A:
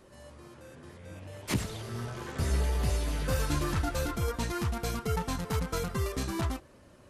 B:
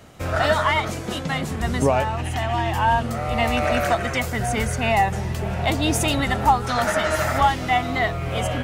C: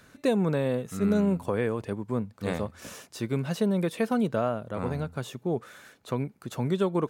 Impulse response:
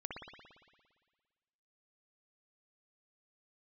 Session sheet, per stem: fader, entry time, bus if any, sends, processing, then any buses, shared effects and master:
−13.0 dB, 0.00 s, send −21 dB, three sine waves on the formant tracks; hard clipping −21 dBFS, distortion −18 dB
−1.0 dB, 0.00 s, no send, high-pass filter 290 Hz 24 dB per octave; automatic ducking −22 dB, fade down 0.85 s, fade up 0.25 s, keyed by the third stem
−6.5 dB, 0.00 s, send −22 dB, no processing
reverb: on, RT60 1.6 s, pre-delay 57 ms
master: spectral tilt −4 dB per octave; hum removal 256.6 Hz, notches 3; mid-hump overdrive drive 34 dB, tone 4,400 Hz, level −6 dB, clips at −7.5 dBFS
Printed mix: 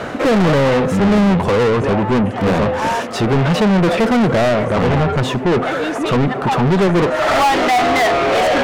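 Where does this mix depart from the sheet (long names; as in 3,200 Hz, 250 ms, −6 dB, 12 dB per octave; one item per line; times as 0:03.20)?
stem A −13.0 dB → −21.0 dB
stem C −6.5 dB → +1.5 dB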